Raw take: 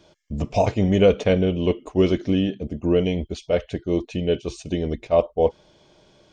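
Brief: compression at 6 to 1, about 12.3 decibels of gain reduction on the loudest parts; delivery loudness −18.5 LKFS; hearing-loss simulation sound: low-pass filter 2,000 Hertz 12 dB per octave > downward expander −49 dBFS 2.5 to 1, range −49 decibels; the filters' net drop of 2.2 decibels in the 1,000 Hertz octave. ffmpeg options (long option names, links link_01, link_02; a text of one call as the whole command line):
ffmpeg -i in.wav -af "equalizer=frequency=1000:width_type=o:gain=-3.5,acompressor=threshold=-26dB:ratio=6,lowpass=2000,agate=range=-49dB:threshold=-49dB:ratio=2.5,volume=13dB" out.wav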